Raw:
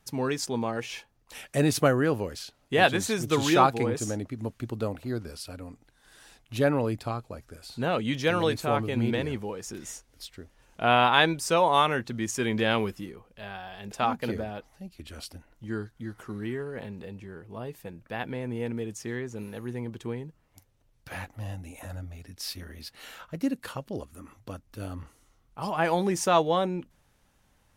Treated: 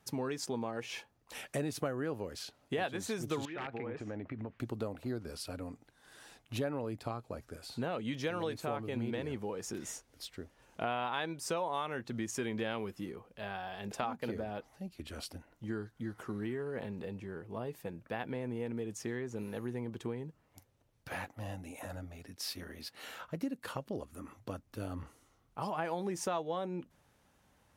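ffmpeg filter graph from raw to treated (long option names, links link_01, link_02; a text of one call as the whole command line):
ffmpeg -i in.wav -filter_complex "[0:a]asettb=1/sr,asplit=3[link_01][link_02][link_03];[link_01]atrim=end=3.454[link_04];[link_02]atrim=start=3.45:end=4.6,asetpts=PTS-STARTPTS,afade=type=in:duration=0.004:curve=qsin,afade=type=out:start_time=1.146:duration=0.004:curve=qsin,aeval=exprs='(mod(3.76*val(0)+1,2)-1)/3.76':channel_layout=same,acompressor=threshold=-35dB:ratio=16:attack=3.2:release=140:knee=1:detection=peak,lowpass=frequency=2200:width_type=q:width=1.8[link_05];[link_03]atrim=start=4.596[link_06];[link_04][link_05]acrossfade=duration=0.004:curve1=hsin:curve2=qsin[link_07];[link_07][link_06]acrossfade=duration=0.004:curve1=qsin:curve2=hsin,asettb=1/sr,asplit=3[link_08][link_09][link_10];[link_08]atrim=end=21.134[link_11];[link_09]atrim=start=21.13:end=22.97,asetpts=PTS-STARTPTS,afade=type=in:duration=0.004:curve=qsin,afade=type=out:start_time=1.836:duration=0.004:curve=qsin,highpass=frequency=140:poles=1,agate=range=-33dB:threshold=-55dB:ratio=3:release=100:detection=peak[link_12];[link_10]atrim=start=22.966[link_13];[link_11][link_12]acrossfade=duration=0.004:curve1=hsin:curve2=qsin[link_14];[link_14][link_13]acrossfade=duration=0.004:curve1=qsin:curve2=hsin,highpass=54,equalizer=frequency=520:width=0.34:gain=4,acompressor=threshold=-31dB:ratio=4,volume=-3.5dB" out.wav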